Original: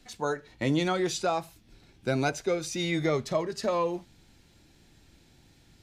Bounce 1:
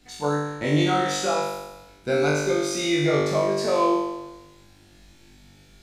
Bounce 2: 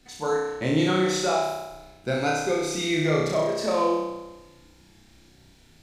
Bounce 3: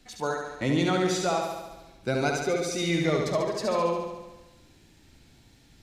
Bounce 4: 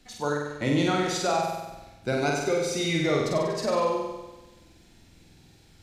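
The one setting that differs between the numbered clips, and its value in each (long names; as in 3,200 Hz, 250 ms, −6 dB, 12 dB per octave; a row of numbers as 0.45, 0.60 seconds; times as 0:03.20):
flutter between parallel walls, walls apart: 3.5, 5.5, 12.1, 8.2 metres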